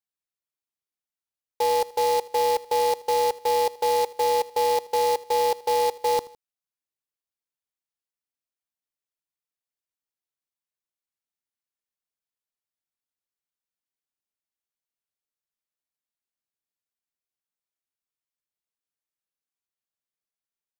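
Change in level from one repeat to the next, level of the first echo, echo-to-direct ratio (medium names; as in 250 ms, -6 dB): -6.5 dB, -20.5 dB, -19.5 dB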